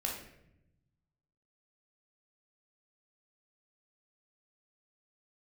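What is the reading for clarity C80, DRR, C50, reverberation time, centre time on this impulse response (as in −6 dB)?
8.0 dB, −1.0 dB, 4.0 dB, 0.80 s, 37 ms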